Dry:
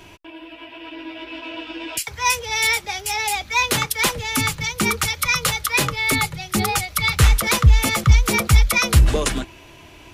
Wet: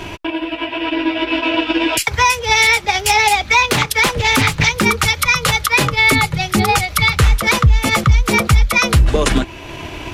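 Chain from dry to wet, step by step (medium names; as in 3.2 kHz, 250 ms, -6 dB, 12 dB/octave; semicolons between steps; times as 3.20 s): treble shelf 5.9 kHz -9 dB; transient shaper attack +4 dB, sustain -4 dB; compression 2.5:1, threshold -27 dBFS, peak gain reduction 15 dB; loudness maximiser +18.5 dB; 2.54–4.84 s: loudspeaker Doppler distortion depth 0.46 ms; trim -2.5 dB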